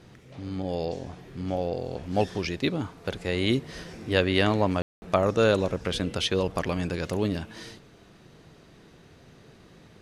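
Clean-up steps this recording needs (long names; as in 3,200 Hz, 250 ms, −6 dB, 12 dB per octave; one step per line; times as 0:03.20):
ambience match 0:04.82–0:05.02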